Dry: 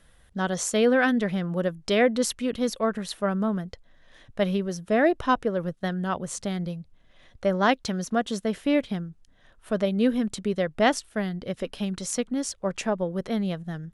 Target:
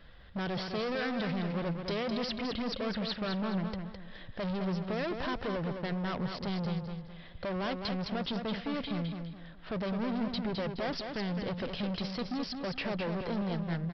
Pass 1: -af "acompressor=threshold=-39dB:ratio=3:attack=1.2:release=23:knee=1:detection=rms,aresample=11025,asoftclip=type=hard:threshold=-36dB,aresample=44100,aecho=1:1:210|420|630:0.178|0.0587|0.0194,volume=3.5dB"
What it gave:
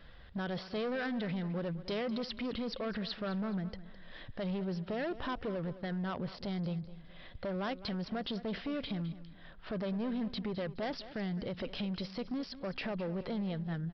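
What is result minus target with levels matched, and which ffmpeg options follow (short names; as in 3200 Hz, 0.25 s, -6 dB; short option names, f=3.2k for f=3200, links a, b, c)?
compressor: peak gain reduction +7.5 dB; echo-to-direct -9 dB
-af "acompressor=threshold=-27.5dB:ratio=3:attack=1.2:release=23:knee=1:detection=rms,aresample=11025,asoftclip=type=hard:threshold=-36dB,aresample=44100,aecho=1:1:210|420|630|840:0.501|0.165|0.0546|0.018,volume=3.5dB"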